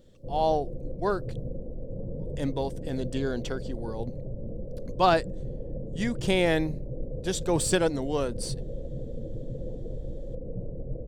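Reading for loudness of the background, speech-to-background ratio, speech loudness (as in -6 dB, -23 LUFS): -38.5 LUFS, 9.5 dB, -29.0 LUFS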